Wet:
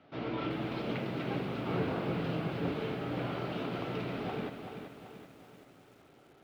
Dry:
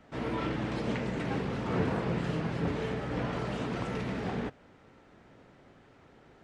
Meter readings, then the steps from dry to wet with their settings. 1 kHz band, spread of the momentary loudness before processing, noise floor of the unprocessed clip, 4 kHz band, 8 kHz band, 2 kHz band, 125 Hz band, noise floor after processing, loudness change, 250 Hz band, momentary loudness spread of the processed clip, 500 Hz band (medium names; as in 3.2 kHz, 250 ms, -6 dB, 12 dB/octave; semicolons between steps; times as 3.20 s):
-2.0 dB, 4 LU, -59 dBFS, -0.5 dB, no reading, -3.0 dB, -3.5 dB, -61 dBFS, -2.5 dB, -2.5 dB, 14 LU, -1.5 dB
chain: cabinet simulation 120–4300 Hz, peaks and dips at 210 Hz -6 dB, 480 Hz -4 dB, 970 Hz -6 dB, 1.8 kHz -8 dB; hum notches 50/100/150/200/250 Hz; bit-crushed delay 384 ms, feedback 55%, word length 10-bit, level -7.5 dB